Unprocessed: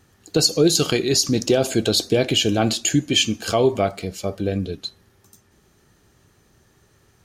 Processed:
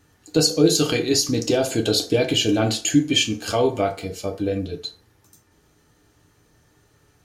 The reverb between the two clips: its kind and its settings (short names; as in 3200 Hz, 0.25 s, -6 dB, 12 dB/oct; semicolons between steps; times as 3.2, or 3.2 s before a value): FDN reverb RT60 0.36 s, low-frequency decay 0.7×, high-frequency decay 0.65×, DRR 2 dB; gain -3 dB